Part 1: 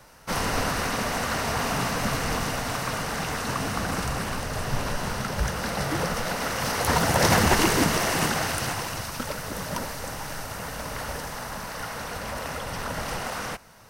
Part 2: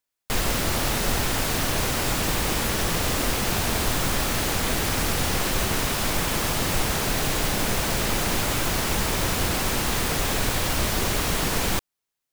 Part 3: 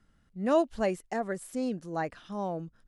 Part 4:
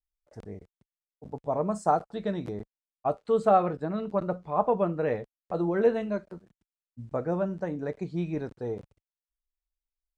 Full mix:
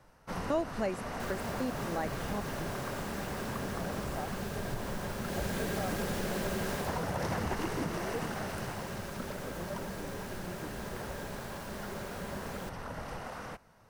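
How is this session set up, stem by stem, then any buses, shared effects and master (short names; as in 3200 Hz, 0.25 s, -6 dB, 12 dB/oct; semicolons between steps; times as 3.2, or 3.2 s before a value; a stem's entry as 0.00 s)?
-8.0 dB, 0.00 s, no send, high shelf 2100 Hz -10.5 dB
5.21 s -20 dB -> 5.45 s -12 dB -> 6.75 s -12 dB -> 7.13 s -23.5 dB, 0.90 s, no send, small resonant body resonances 200/390/560/1600 Hz, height 14 dB
+1.0 dB, 0.00 s, no send, step gate "x..x.xxxxxx.." 150 bpm
-15.5 dB, 2.30 s, no send, dry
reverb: off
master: compressor 2:1, threshold -33 dBFS, peak gain reduction 8.5 dB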